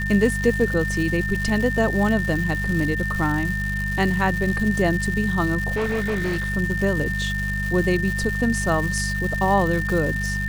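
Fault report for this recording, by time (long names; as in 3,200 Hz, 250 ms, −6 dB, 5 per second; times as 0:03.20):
surface crackle 390 per second −27 dBFS
mains hum 50 Hz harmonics 4 −27 dBFS
whistle 1,800 Hz −26 dBFS
0:05.76–0:06.50: clipping −20 dBFS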